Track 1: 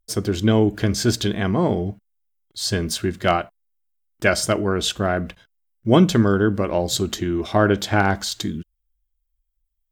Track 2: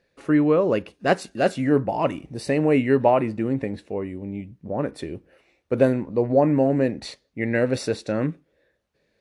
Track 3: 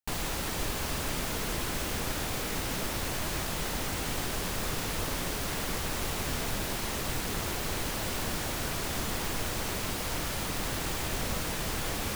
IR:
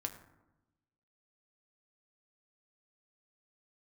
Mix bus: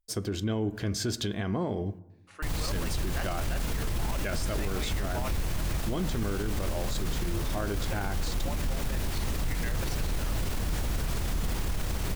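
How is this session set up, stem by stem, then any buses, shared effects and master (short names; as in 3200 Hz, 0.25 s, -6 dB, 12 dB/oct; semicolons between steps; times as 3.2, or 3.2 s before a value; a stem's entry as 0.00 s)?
-9.5 dB, 0.00 s, send -8 dB, dry
-5.0 dB, 2.10 s, no send, HPF 1100 Hz 12 dB/oct
+0.5 dB, 2.35 s, no send, octaver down 2 oct, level +3 dB; low shelf 170 Hz +11 dB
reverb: on, RT60 0.95 s, pre-delay 5 ms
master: limiter -22 dBFS, peak gain reduction 14 dB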